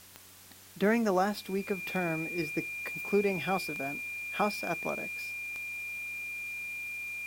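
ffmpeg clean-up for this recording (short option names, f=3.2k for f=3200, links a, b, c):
-af "adeclick=t=4,bandreject=f=94.6:t=h:w=4,bandreject=f=189.2:t=h:w=4,bandreject=f=283.8:t=h:w=4,bandreject=f=378.4:t=h:w=4,bandreject=f=2.4k:w=30,afwtdn=0.0022"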